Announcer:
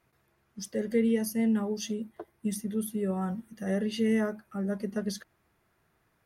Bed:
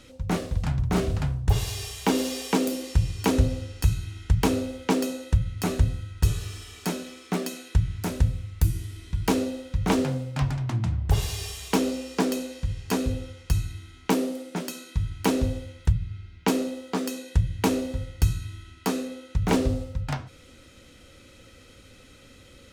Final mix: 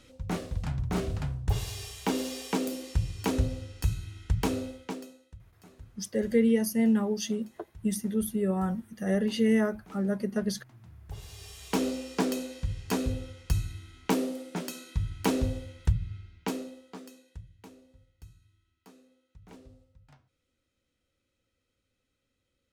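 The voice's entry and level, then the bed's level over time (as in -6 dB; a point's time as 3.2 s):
5.40 s, +2.5 dB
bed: 4.68 s -6 dB
5.35 s -28 dB
10.77 s -28 dB
11.83 s -3.5 dB
16.13 s -3.5 dB
17.75 s -29 dB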